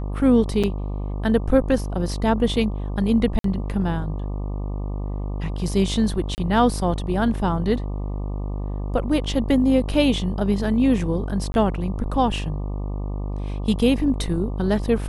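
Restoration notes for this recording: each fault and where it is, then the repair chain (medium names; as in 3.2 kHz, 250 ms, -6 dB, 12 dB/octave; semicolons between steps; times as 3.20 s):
buzz 50 Hz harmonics 24 -27 dBFS
0.63–0.64 s: dropout 6.2 ms
3.39–3.44 s: dropout 53 ms
6.35–6.38 s: dropout 29 ms
11.52–11.54 s: dropout 21 ms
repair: de-hum 50 Hz, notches 24; interpolate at 0.63 s, 6.2 ms; interpolate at 3.39 s, 53 ms; interpolate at 6.35 s, 29 ms; interpolate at 11.52 s, 21 ms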